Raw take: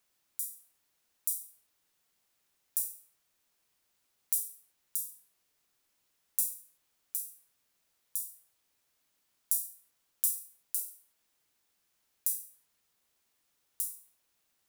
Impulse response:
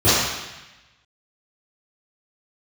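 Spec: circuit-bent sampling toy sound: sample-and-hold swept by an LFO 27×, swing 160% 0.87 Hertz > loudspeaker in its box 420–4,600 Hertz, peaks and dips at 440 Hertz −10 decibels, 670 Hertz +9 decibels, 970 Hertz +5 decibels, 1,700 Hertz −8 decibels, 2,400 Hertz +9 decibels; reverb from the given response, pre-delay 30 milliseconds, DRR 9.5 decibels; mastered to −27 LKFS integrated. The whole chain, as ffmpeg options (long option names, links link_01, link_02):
-filter_complex "[0:a]asplit=2[link_01][link_02];[1:a]atrim=start_sample=2205,adelay=30[link_03];[link_02][link_03]afir=irnorm=-1:irlink=0,volume=-33.5dB[link_04];[link_01][link_04]amix=inputs=2:normalize=0,acrusher=samples=27:mix=1:aa=0.000001:lfo=1:lforange=43.2:lforate=0.87,highpass=420,equalizer=frequency=440:width_type=q:width=4:gain=-10,equalizer=frequency=670:width_type=q:width=4:gain=9,equalizer=frequency=970:width_type=q:width=4:gain=5,equalizer=frequency=1700:width_type=q:width=4:gain=-8,equalizer=frequency=2400:width_type=q:width=4:gain=9,lowpass=frequency=4600:width=0.5412,lowpass=frequency=4600:width=1.3066,volume=11dB"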